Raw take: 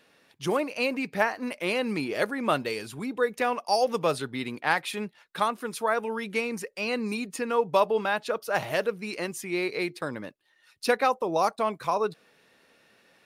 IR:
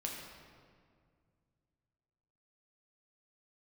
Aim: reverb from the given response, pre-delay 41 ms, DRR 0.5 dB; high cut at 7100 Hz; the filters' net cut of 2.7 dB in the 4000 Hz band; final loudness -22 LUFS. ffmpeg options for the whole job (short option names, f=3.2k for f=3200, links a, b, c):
-filter_complex "[0:a]lowpass=7.1k,equalizer=f=4k:t=o:g=-3,asplit=2[a][b];[1:a]atrim=start_sample=2205,adelay=41[c];[b][c]afir=irnorm=-1:irlink=0,volume=-1dB[d];[a][d]amix=inputs=2:normalize=0,volume=3.5dB"